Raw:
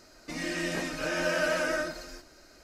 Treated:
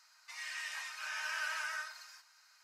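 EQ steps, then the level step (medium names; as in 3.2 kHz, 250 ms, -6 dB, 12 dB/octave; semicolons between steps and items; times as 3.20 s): elliptic high-pass 930 Hz, stop band 70 dB; -6.0 dB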